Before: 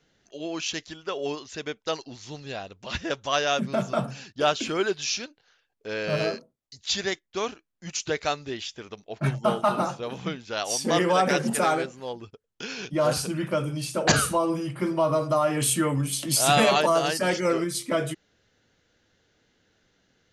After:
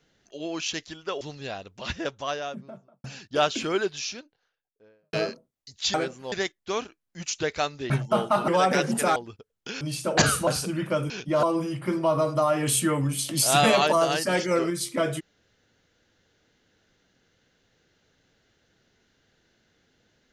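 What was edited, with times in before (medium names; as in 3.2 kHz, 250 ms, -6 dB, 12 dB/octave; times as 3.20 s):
1.21–2.26 s: delete
2.81–4.09 s: studio fade out
4.66–6.18 s: studio fade out
8.57–9.23 s: delete
9.81–11.04 s: delete
11.72–12.10 s: move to 6.99 s
12.75–13.08 s: swap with 13.71–14.37 s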